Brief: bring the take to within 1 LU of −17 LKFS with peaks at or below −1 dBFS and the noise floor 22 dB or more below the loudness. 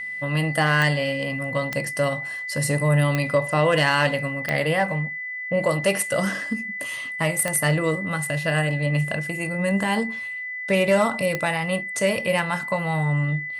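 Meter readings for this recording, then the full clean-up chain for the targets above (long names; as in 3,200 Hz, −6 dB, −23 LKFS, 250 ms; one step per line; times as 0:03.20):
number of clicks 6; interfering tone 2,000 Hz; level of the tone −29 dBFS; integrated loudness −23.0 LKFS; sample peak −7.5 dBFS; target loudness −17.0 LKFS
→ click removal
notch filter 2,000 Hz, Q 30
level +6 dB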